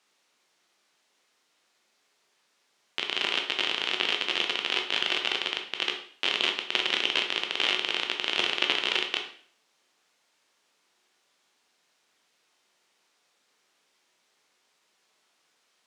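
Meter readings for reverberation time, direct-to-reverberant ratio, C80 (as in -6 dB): 0.50 s, 2.5 dB, 12.0 dB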